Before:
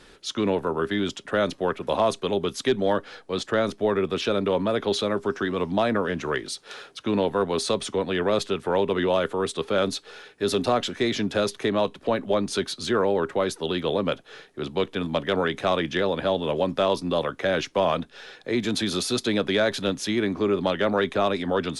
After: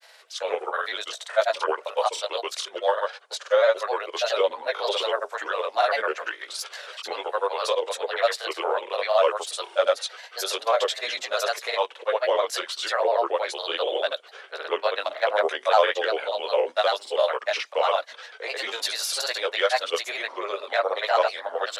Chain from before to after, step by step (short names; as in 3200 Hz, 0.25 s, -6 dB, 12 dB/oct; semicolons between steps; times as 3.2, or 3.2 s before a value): chorus voices 4, 0.75 Hz, delay 21 ms, depth 1.1 ms; elliptic high-pass 530 Hz, stop band 80 dB; grains, pitch spread up and down by 3 st; gain +7 dB